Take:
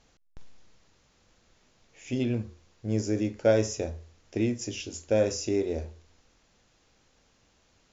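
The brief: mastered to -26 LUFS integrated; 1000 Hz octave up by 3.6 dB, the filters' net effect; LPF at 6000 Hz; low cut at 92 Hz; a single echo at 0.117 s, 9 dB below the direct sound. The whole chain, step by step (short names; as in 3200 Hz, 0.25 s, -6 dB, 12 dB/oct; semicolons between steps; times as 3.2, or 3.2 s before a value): HPF 92 Hz; LPF 6000 Hz; bell 1000 Hz +6 dB; echo 0.117 s -9 dB; gain +2 dB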